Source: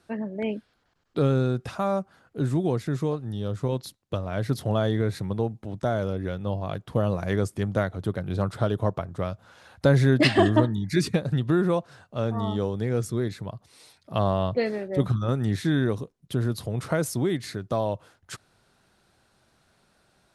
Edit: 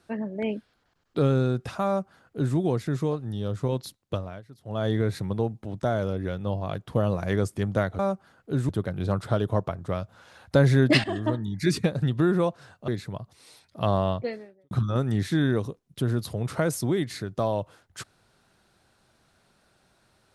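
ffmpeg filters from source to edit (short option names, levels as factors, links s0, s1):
-filter_complex "[0:a]asplit=8[s0][s1][s2][s3][s4][s5][s6][s7];[s0]atrim=end=4.42,asetpts=PTS-STARTPTS,afade=t=out:st=4.14:d=0.28:silence=0.0749894[s8];[s1]atrim=start=4.42:end=4.63,asetpts=PTS-STARTPTS,volume=0.075[s9];[s2]atrim=start=4.63:end=7.992,asetpts=PTS-STARTPTS,afade=t=in:d=0.28:silence=0.0749894[s10];[s3]atrim=start=1.858:end=2.562[s11];[s4]atrim=start=7.988:end=10.34,asetpts=PTS-STARTPTS,afade=t=out:st=2.348:d=0.004:c=hsin:silence=0.177828[s12];[s5]atrim=start=10.34:end=12.182,asetpts=PTS-STARTPTS,afade=t=in:d=0.68:silence=0.177828[s13];[s6]atrim=start=13.208:end=15.04,asetpts=PTS-STARTPTS,afade=t=out:st=1.202:d=0.63:c=qua[s14];[s7]atrim=start=15.04,asetpts=PTS-STARTPTS,afade=t=in:d=0.004:c=hsin[s15];[s8][s9][s10]concat=n=3:v=0:a=1[s16];[s16][s11]acrossfade=d=0.004:c1=hsin:c2=hsin[s17];[s12][s13]concat=n=2:v=0:a=1[s18];[s17][s18]acrossfade=d=0.004:c1=hsin:c2=hsin[s19];[s14][s15]concat=n=2:v=0:a=1[s20];[s19][s20]acrossfade=d=0.004:c1=hsin:c2=hsin"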